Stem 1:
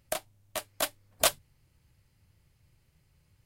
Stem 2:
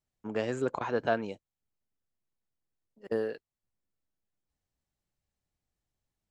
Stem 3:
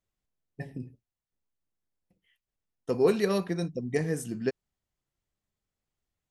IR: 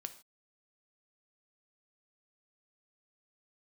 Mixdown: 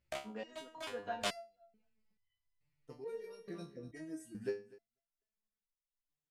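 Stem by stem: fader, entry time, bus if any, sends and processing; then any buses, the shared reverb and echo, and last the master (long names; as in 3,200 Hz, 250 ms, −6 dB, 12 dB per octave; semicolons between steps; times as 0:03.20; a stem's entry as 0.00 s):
−4.0 dB, 0.00 s, no send, no echo send, low-pass filter 5,700 Hz 12 dB per octave; parametric band 2,300 Hz +4 dB; leveller curve on the samples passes 1
−7.5 dB, 0.00 s, send −8.5 dB, echo send −11.5 dB, comb filter 4.2 ms, depth 81%
−4.0 dB, 0.00 s, send −6.5 dB, echo send −18 dB, reverb reduction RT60 0.54 s; harmonic and percussive parts rebalanced harmonic +4 dB; automatic ducking −14 dB, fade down 0.30 s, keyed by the second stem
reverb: on, pre-delay 3 ms
echo: repeating echo 246 ms, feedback 18%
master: step-sequenced resonator 2.3 Hz 69–1,000 Hz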